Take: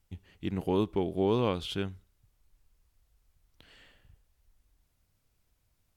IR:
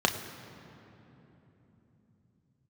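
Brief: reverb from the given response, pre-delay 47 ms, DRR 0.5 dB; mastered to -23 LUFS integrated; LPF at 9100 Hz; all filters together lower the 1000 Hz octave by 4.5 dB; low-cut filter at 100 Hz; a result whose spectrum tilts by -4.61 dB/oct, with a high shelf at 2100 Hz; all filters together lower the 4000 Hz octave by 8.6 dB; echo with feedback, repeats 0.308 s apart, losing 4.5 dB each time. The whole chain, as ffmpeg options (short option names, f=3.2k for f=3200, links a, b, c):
-filter_complex "[0:a]highpass=100,lowpass=9.1k,equalizer=f=1k:t=o:g=-4,highshelf=f=2.1k:g=-7,equalizer=f=4k:t=o:g=-4.5,aecho=1:1:308|616|924|1232|1540|1848|2156|2464|2772:0.596|0.357|0.214|0.129|0.0772|0.0463|0.0278|0.0167|0.01,asplit=2[a][b];[1:a]atrim=start_sample=2205,adelay=47[c];[b][c]afir=irnorm=-1:irlink=0,volume=-13dB[d];[a][d]amix=inputs=2:normalize=0,volume=5dB"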